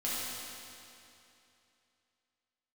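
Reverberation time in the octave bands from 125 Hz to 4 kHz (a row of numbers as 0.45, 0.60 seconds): 2.8, 2.8, 2.8, 2.8, 2.7, 2.6 seconds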